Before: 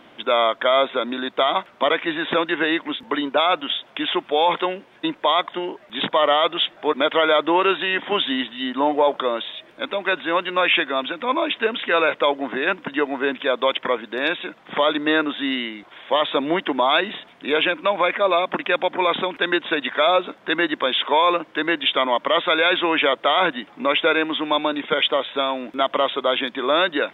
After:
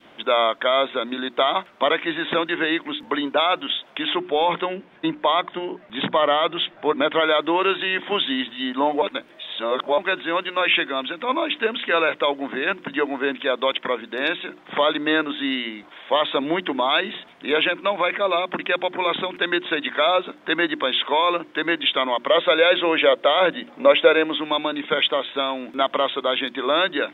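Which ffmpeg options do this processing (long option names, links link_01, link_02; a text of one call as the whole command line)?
ffmpeg -i in.wav -filter_complex "[0:a]asettb=1/sr,asplit=3[link_01][link_02][link_03];[link_01]atrim=end=4.174[link_04];[link_02]atrim=start=4.17:end=7.21,asetpts=PTS-STARTPTS,afade=type=in:duration=0.004:curve=qsin,afade=type=out:start_time=3.036:duration=0.004:curve=qsin,bass=frequency=250:gain=6,treble=frequency=4000:gain=-9[link_05];[link_03]atrim=start=7.206[link_06];[link_04][link_05]acrossfade=duration=0.004:curve1=hsin:curve2=qsin[link_07];[link_07][link_06]acrossfade=duration=0.004:curve1=qsin:curve2=hsin,asettb=1/sr,asplit=3[link_08][link_09][link_10];[link_08]atrim=end=22.294[link_11];[link_09]atrim=start=22.29:end=24.36,asetpts=PTS-STARTPTS,afade=type=in:duration=0.004:curve=qsin,afade=type=out:start_time=2.066:duration=0.004:curve=qsin,equalizer=frequency=540:width_type=o:width=0.44:gain=10[link_12];[link_10]atrim=start=24.356[link_13];[link_11][link_12]acrossfade=duration=0.004:curve1=hsin:curve2=qsin[link_14];[link_14][link_13]acrossfade=duration=0.004:curve1=qsin:curve2=hsin,asplit=3[link_15][link_16][link_17];[link_15]atrim=end=9.022[link_18];[link_16]atrim=start=9.018:end=9.982,asetpts=PTS-STARTPTS,areverse[link_19];[link_17]atrim=start=9.978[link_20];[link_18][link_19]acrossfade=duration=0.004:curve1=hsin:curve2=hsin[link_21];[link_21][link_20]acrossfade=duration=0.004:curve1=hsin:curve2=hsin,bandreject=frequency=60:width_type=h:width=6,bandreject=frequency=120:width_type=h:width=6,bandreject=frequency=180:width_type=h:width=6,bandreject=frequency=240:width_type=h:width=6,bandreject=frequency=300:width_type=h:width=6,bandreject=frequency=360:width_type=h:width=6,adynamicequalizer=threshold=0.0282:dfrequency=780:dqfactor=0.7:tfrequency=780:tqfactor=0.7:attack=5:release=100:ratio=0.375:range=2:mode=cutabove:tftype=bell" out.wav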